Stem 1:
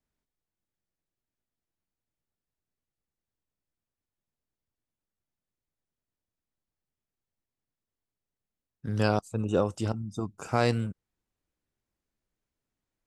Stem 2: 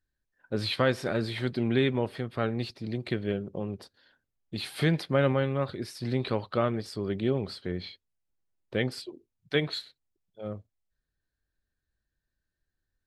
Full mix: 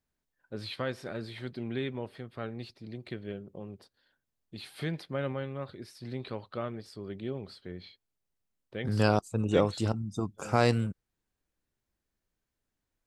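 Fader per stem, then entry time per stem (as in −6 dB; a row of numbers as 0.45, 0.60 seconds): +0.5, −9.0 decibels; 0.00, 0.00 seconds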